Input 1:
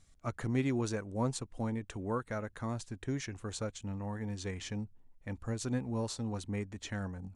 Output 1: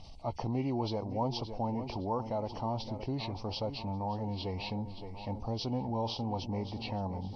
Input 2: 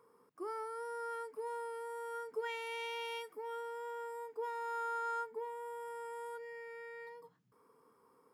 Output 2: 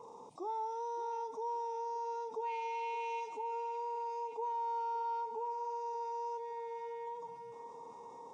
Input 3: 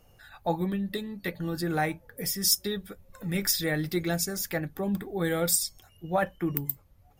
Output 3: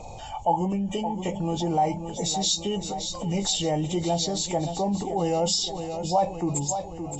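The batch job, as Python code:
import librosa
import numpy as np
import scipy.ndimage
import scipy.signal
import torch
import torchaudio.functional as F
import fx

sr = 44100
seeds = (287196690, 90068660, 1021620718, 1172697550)

p1 = fx.freq_compress(x, sr, knee_hz=1900.0, ratio=1.5)
p2 = fx.curve_eq(p1, sr, hz=(430.0, 880.0, 1600.0, 2400.0), db=(0, 13, -24, -1))
p3 = p2 + fx.echo_feedback(p2, sr, ms=569, feedback_pct=48, wet_db=-15.5, dry=0)
p4 = fx.env_flatten(p3, sr, amount_pct=50)
y = p4 * 10.0 ** (-4.0 / 20.0)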